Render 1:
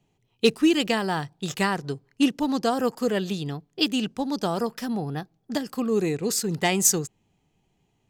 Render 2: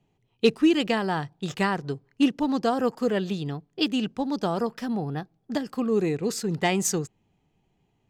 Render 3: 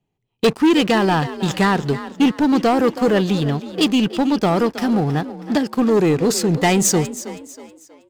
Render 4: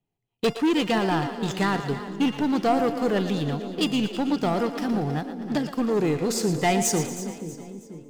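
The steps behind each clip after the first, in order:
low-pass filter 3,100 Hz 6 dB per octave
leveller curve on the samples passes 3; echo with shifted repeats 320 ms, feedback 39%, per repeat +39 Hz, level −14 dB
tuned comb filter 700 Hz, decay 0.48 s, mix 70%; echo with a time of its own for lows and highs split 470 Hz, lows 486 ms, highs 116 ms, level −10.5 dB; level +2.5 dB

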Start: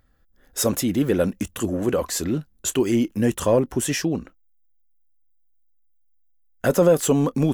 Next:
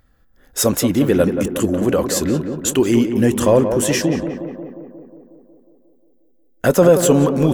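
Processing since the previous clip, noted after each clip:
tape delay 180 ms, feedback 74%, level −6 dB, low-pass 1,500 Hz
level +5 dB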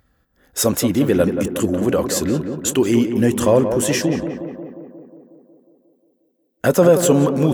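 high-pass filter 52 Hz
level −1 dB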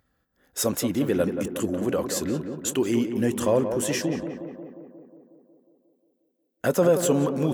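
low-shelf EQ 68 Hz −9 dB
level −7 dB

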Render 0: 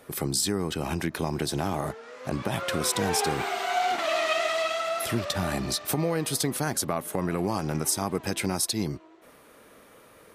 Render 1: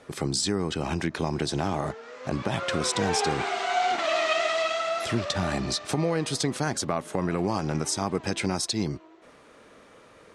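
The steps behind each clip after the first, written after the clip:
low-pass filter 7,900 Hz 24 dB per octave
level +1 dB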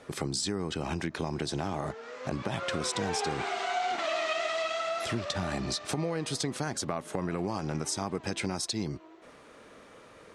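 downward compressor 2 to 1, threshold −32 dBFS, peak gain reduction 7 dB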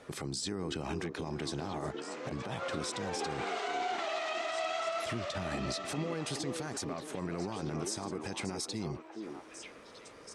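brickwall limiter −25.5 dBFS, peak gain reduction 9.5 dB
on a send: echo through a band-pass that steps 420 ms, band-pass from 360 Hz, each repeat 1.4 octaves, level −1.5 dB
on the sum: level −2 dB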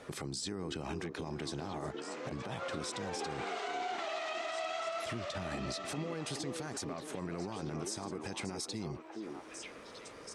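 downward compressor 1.5 to 1, threshold −47 dBFS, peak gain reduction 6 dB
level +2.5 dB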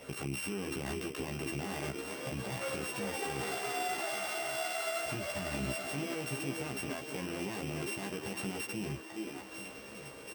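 samples sorted by size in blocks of 16 samples
double-tracking delay 15 ms −2.5 dB
single-tap delay 1,148 ms −15 dB

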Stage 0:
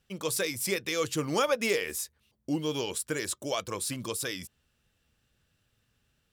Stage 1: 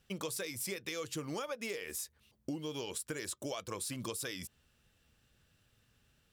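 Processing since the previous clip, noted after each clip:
downward compressor 12 to 1, threshold −38 dBFS, peak gain reduction 17 dB
level +2 dB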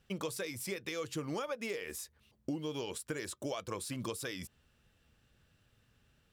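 high-shelf EQ 3,700 Hz −6.5 dB
level +2 dB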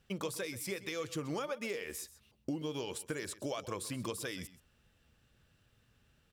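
single-tap delay 129 ms −16.5 dB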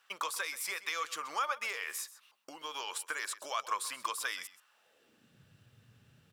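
high-pass filter sweep 1,100 Hz → 120 Hz, 0:04.66–0:05.45
level +4 dB

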